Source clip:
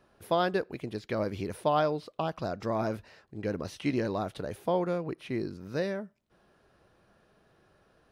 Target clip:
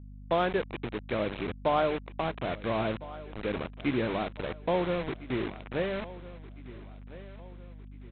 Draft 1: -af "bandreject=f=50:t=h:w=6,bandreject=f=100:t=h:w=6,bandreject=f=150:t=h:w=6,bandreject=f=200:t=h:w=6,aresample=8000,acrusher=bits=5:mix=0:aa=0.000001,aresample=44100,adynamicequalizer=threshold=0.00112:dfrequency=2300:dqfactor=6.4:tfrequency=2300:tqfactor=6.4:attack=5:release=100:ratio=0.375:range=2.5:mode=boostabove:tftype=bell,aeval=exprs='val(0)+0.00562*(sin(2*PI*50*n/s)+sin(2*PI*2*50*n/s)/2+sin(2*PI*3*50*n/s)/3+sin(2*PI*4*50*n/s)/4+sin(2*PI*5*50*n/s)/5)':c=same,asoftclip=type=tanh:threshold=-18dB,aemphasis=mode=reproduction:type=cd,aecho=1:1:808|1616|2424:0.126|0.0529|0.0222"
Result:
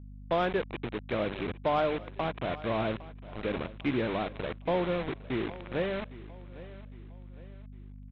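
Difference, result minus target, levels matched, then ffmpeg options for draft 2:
echo 0.548 s early; soft clip: distortion +12 dB
-af "bandreject=f=50:t=h:w=6,bandreject=f=100:t=h:w=6,bandreject=f=150:t=h:w=6,bandreject=f=200:t=h:w=6,aresample=8000,acrusher=bits=5:mix=0:aa=0.000001,aresample=44100,adynamicequalizer=threshold=0.00112:dfrequency=2300:dqfactor=6.4:tfrequency=2300:tqfactor=6.4:attack=5:release=100:ratio=0.375:range=2.5:mode=boostabove:tftype=bell,aeval=exprs='val(0)+0.00562*(sin(2*PI*50*n/s)+sin(2*PI*2*50*n/s)/2+sin(2*PI*3*50*n/s)/3+sin(2*PI*4*50*n/s)/4+sin(2*PI*5*50*n/s)/5)':c=same,asoftclip=type=tanh:threshold=-11dB,aemphasis=mode=reproduction:type=cd,aecho=1:1:1356|2712|4068:0.126|0.0529|0.0222"

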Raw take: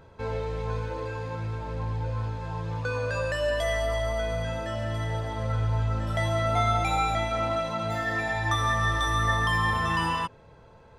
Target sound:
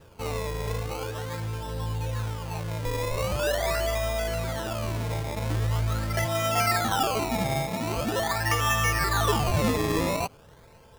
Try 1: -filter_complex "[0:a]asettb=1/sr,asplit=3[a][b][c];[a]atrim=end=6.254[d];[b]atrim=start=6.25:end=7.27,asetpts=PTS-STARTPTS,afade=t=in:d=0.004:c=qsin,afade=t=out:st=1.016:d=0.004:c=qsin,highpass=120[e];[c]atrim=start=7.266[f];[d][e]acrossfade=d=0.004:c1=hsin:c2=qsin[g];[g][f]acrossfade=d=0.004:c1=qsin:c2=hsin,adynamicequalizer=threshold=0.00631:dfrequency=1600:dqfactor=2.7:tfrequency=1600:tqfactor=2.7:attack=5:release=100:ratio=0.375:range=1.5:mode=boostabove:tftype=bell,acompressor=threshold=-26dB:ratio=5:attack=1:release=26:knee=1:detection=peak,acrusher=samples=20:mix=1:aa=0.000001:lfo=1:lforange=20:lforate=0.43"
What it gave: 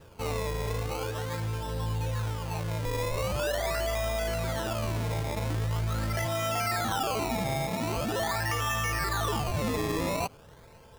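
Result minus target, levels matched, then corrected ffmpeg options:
compressor: peak gain reduction +8.5 dB
-filter_complex "[0:a]asettb=1/sr,asplit=3[a][b][c];[a]atrim=end=6.254[d];[b]atrim=start=6.25:end=7.27,asetpts=PTS-STARTPTS,afade=t=in:d=0.004:c=qsin,afade=t=out:st=1.016:d=0.004:c=qsin,highpass=120[e];[c]atrim=start=7.266[f];[d][e]acrossfade=d=0.004:c1=hsin:c2=qsin[g];[g][f]acrossfade=d=0.004:c1=qsin:c2=hsin,adynamicequalizer=threshold=0.00631:dfrequency=1600:dqfactor=2.7:tfrequency=1600:tqfactor=2.7:attack=5:release=100:ratio=0.375:range=1.5:mode=boostabove:tftype=bell,acrusher=samples=20:mix=1:aa=0.000001:lfo=1:lforange=20:lforate=0.43"

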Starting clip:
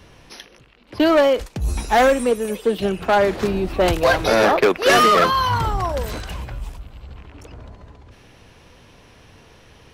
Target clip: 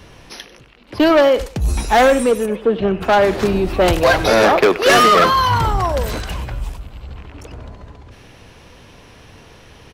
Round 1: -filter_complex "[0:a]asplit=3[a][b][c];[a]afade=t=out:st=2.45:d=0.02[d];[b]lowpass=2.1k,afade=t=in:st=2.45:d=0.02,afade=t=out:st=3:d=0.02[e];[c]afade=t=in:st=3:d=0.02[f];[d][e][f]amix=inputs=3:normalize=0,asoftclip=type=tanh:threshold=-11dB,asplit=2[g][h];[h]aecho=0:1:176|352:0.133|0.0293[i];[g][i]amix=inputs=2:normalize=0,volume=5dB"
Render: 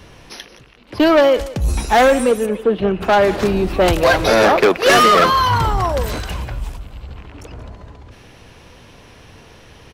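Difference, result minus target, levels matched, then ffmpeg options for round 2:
echo 80 ms late
-filter_complex "[0:a]asplit=3[a][b][c];[a]afade=t=out:st=2.45:d=0.02[d];[b]lowpass=2.1k,afade=t=in:st=2.45:d=0.02,afade=t=out:st=3:d=0.02[e];[c]afade=t=in:st=3:d=0.02[f];[d][e][f]amix=inputs=3:normalize=0,asoftclip=type=tanh:threshold=-11dB,asplit=2[g][h];[h]aecho=0:1:96|192:0.133|0.0293[i];[g][i]amix=inputs=2:normalize=0,volume=5dB"

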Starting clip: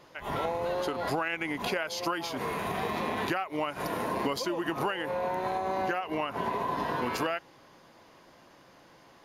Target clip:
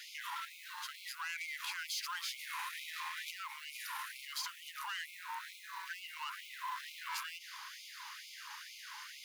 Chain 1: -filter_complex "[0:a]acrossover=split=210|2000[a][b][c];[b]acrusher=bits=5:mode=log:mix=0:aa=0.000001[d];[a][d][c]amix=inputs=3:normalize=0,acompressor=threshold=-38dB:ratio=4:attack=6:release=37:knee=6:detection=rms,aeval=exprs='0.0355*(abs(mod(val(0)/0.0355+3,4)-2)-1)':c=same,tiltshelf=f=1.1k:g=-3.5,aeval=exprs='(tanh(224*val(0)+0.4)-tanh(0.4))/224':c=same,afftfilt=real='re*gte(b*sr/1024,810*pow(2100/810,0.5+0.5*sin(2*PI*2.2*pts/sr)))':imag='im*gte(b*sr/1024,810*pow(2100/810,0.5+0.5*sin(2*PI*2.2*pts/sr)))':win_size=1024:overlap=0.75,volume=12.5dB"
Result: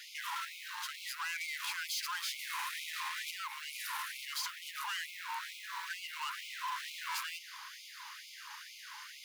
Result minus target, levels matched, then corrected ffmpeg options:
compressor: peak gain reduction -7.5 dB
-filter_complex "[0:a]acrossover=split=210|2000[a][b][c];[b]acrusher=bits=5:mode=log:mix=0:aa=0.000001[d];[a][d][c]amix=inputs=3:normalize=0,acompressor=threshold=-48dB:ratio=4:attack=6:release=37:knee=6:detection=rms,aeval=exprs='0.0355*(abs(mod(val(0)/0.0355+3,4)-2)-1)':c=same,tiltshelf=f=1.1k:g=-3.5,aeval=exprs='(tanh(224*val(0)+0.4)-tanh(0.4))/224':c=same,afftfilt=real='re*gte(b*sr/1024,810*pow(2100/810,0.5+0.5*sin(2*PI*2.2*pts/sr)))':imag='im*gte(b*sr/1024,810*pow(2100/810,0.5+0.5*sin(2*PI*2.2*pts/sr)))':win_size=1024:overlap=0.75,volume=12.5dB"

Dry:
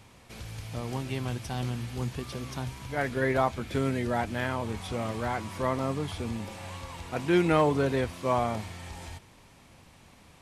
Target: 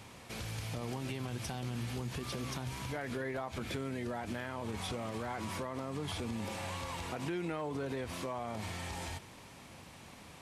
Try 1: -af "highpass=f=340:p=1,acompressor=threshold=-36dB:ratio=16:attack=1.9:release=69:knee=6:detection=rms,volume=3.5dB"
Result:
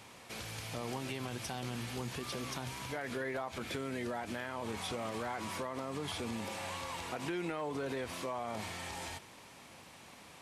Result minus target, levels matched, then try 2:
125 Hz band -4.5 dB
-af "highpass=f=100:p=1,acompressor=threshold=-36dB:ratio=16:attack=1.9:release=69:knee=6:detection=rms,volume=3.5dB"

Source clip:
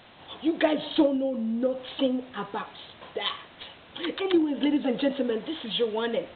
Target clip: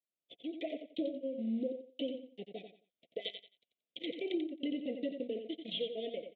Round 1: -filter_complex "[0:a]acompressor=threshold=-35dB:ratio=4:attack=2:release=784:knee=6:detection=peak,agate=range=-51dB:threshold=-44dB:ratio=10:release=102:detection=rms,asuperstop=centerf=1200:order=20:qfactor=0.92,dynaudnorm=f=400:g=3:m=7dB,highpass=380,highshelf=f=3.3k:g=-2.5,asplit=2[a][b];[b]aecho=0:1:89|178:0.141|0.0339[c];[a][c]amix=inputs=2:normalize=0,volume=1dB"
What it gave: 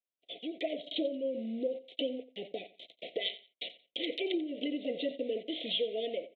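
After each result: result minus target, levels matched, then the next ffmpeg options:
echo-to-direct -9.5 dB; compressor: peak gain reduction -6 dB; 250 Hz band -3.0 dB
-filter_complex "[0:a]acompressor=threshold=-35dB:ratio=4:attack=2:release=784:knee=6:detection=peak,agate=range=-51dB:threshold=-44dB:ratio=10:release=102:detection=rms,asuperstop=centerf=1200:order=20:qfactor=0.92,dynaudnorm=f=400:g=3:m=7dB,highpass=380,highshelf=f=3.3k:g=-2.5,asplit=2[a][b];[b]aecho=0:1:89|178|267:0.422|0.101|0.0243[c];[a][c]amix=inputs=2:normalize=0,volume=1dB"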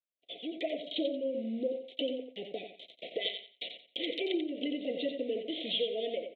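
compressor: peak gain reduction -6 dB; 250 Hz band -3.0 dB
-filter_complex "[0:a]acompressor=threshold=-43dB:ratio=4:attack=2:release=784:knee=6:detection=peak,agate=range=-51dB:threshold=-44dB:ratio=10:release=102:detection=rms,asuperstop=centerf=1200:order=20:qfactor=0.92,dynaudnorm=f=400:g=3:m=7dB,highpass=380,highshelf=f=3.3k:g=-2.5,asplit=2[a][b];[b]aecho=0:1:89|178|267:0.422|0.101|0.0243[c];[a][c]amix=inputs=2:normalize=0,volume=1dB"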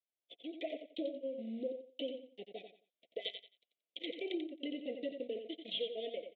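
250 Hz band -2.5 dB
-filter_complex "[0:a]acompressor=threshold=-43dB:ratio=4:attack=2:release=784:knee=6:detection=peak,agate=range=-51dB:threshold=-44dB:ratio=10:release=102:detection=rms,asuperstop=centerf=1200:order=20:qfactor=0.92,dynaudnorm=f=400:g=3:m=7dB,highpass=190,highshelf=f=3.3k:g=-2.5,asplit=2[a][b];[b]aecho=0:1:89|178|267:0.422|0.101|0.0243[c];[a][c]amix=inputs=2:normalize=0,volume=1dB"

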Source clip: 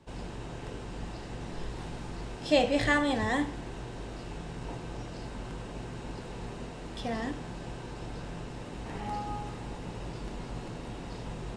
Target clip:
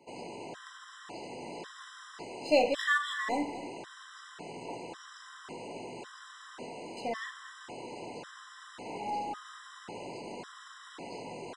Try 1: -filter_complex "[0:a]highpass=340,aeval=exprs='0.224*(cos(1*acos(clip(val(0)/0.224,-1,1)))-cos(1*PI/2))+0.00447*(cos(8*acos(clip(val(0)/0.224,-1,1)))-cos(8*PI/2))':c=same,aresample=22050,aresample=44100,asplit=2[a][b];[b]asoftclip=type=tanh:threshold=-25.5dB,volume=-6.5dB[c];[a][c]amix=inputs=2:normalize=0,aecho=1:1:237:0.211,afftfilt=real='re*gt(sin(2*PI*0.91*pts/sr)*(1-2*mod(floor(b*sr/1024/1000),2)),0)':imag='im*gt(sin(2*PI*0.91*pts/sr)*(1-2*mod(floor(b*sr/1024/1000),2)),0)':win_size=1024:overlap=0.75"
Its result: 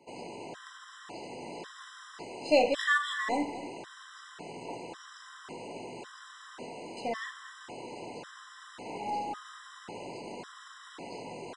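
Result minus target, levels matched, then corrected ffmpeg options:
soft clip: distortion -8 dB
-filter_complex "[0:a]highpass=340,aeval=exprs='0.224*(cos(1*acos(clip(val(0)/0.224,-1,1)))-cos(1*PI/2))+0.00447*(cos(8*acos(clip(val(0)/0.224,-1,1)))-cos(8*PI/2))':c=same,aresample=22050,aresample=44100,asplit=2[a][b];[b]asoftclip=type=tanh:threshold=-36.5dB,volume=-6.5dB[c];[a][c]amix=inputs=2:normalize=0,aecho=1:1:237:0.211,afftfilt=real='re*gt(sin(2*PI*0.91*pts/sr)*(1-2*mod(floor(b*sr/1024/1000),2)),0)':imag='im*gt(sin(2*PI*0.91*pts/sr)*(1-2*mod(floor(b*sr/1024/1000),2)),0)':win_size=1024:overlap=0.75"

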